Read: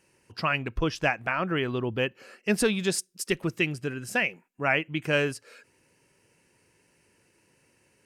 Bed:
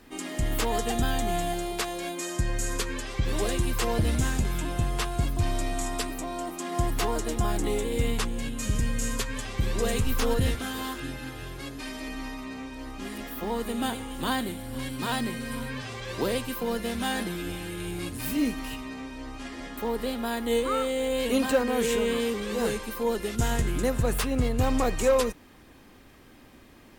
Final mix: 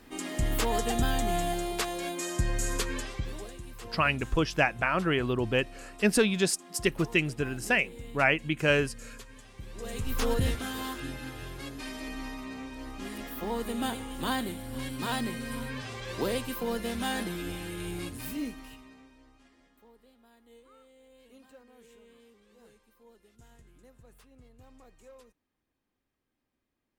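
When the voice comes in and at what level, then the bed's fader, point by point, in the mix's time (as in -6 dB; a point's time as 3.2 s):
3.55 s, +0.5 dB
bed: 3.02 s -1 dB
3.53 s -17.5 dB
9.67 s -17.5 dB
10.22 s -2.5 dB
17.97 s -2.5 dB
20.03 s -31 dB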